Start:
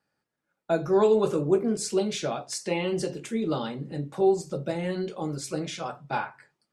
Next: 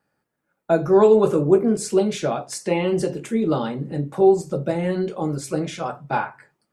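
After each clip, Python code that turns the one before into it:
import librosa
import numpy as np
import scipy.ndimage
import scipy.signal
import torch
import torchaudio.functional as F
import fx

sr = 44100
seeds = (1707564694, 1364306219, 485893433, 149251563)

y = fx.peak_eq(x, sr, hz=4500.0, db=-7.5, octaves=1.9)
y = y * librosa.db_to_amplitude(7.0)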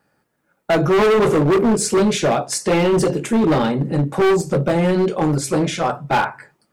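y = np.clip(x, -10.0 ** (-21.0 / 20.0), 10.0 ** (-21.0 / 20.0))
y = y * librosa.db_to_amplitude(8.5)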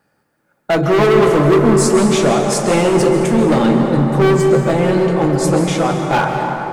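y = fx.rev_plate(x, sr, seeds[0], rt60_s=4.5, hf_ratio=0.4, predelay_ms=120, drr_db=2.5)
y = y * librosa.db_to_amplitude(1.5)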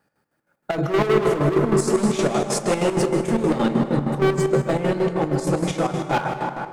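y = fx.chopper(x, sr, hz=6.4, depth_pct=60, duty_pct=55)
y = y * librosa.db_to_amplitude(-5.5)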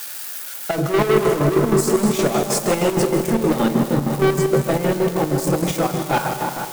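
y = x + 0.5 * 10.0 ** (-23.0 / 20.0) * np.diff(np.sign(x), prepend=np.sign(x[:1]))
y = y * librosa.db_to_amplitude(2.0)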